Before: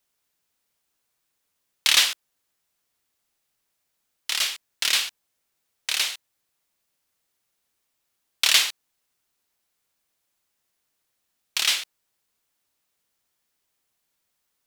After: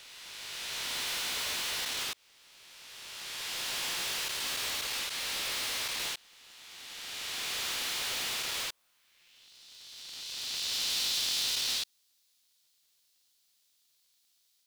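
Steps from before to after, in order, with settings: reverse spectral sustain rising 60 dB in 2.79 s; compression, threshold -22 dBFS, peak gain reduction 12.5 dB; peak limiter -20 dBFS, peak gain reduction 10.5 dB; overload inside the chain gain 33 dB; high-pass sweep 700 Hz -> 4 kHz, 8.69–9.52 s; polarity switched at an audio rate 260 Hz

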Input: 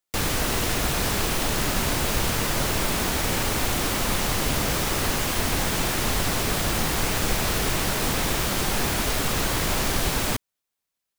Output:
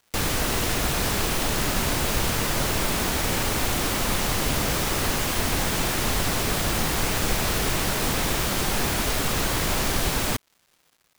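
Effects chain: crackle 470 per s -49 dBFS

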